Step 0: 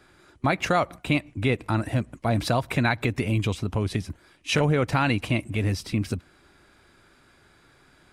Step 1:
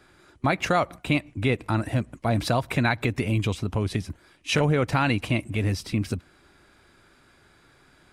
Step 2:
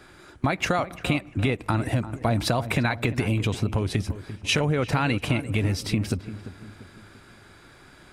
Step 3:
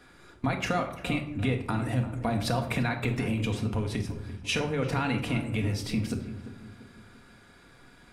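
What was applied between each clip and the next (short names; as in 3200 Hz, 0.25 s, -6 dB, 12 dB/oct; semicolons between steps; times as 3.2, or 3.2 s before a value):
nothing audible
compressor, threshold -27 dBFS, peak gain reduction 10 dB; darkening echo 0.344 s, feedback 46%, low-pass 1400 Hz, level -12.5 dB; gain +6.5 dB
reverb RT60 0.65 s, pre-delay 4 ms, DRR 3.5 dB; gain -6.5 dB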